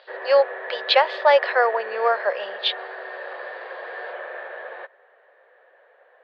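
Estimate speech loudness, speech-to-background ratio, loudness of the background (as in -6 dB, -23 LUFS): -21.0 LUFS, 12.5 dB, -33.5 LUFS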